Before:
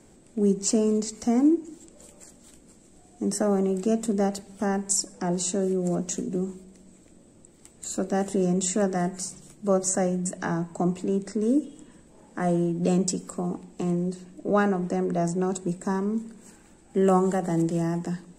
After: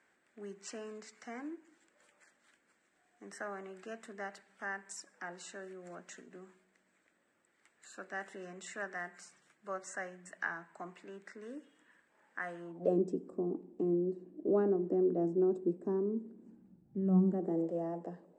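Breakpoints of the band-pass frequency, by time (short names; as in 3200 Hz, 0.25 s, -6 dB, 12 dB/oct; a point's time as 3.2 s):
band-pass, Q 3
12.58 s 1700 Hz
12.99 s 350 Hz
16.28 s 350 Hz
17.01 s 120 Hz
17.65 s 560 Hz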